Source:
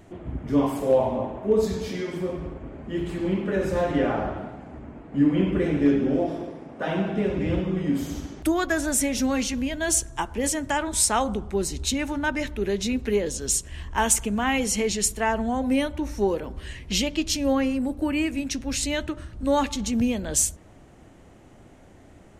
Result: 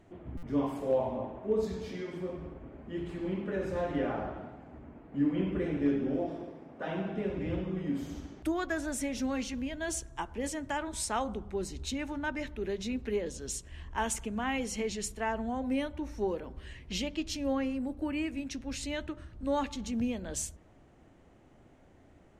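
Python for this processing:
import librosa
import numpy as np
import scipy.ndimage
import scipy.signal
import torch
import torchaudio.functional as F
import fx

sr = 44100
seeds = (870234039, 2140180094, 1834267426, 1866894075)

y = fx.high_shelf(x, sr, hz=6700.0, db=-10.5)
y = fx.hum_notches(y, sr, base_hz=50, count=4)
y = fx.buffer_glitch(y, sr, at_s=(0.37,), block=256, repeats=9)
y = F.gain(torch.from_numpy(y), -8.5).numpy()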